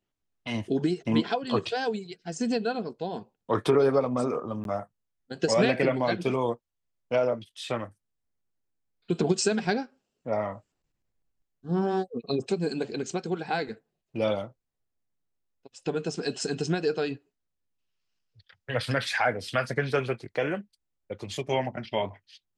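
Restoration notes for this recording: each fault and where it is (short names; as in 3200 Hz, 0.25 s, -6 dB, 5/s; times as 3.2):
4.64–4.65 gap 12 ms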